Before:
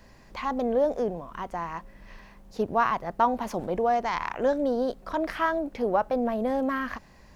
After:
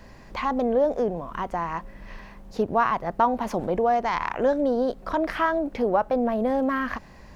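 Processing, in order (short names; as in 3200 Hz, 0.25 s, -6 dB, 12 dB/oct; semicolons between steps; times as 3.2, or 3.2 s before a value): high shelf 3800 Hz -5.5 dB; in parallel at +1 dB: compressor, threshold -32 dBFS, peak gain reduction 14.5 dB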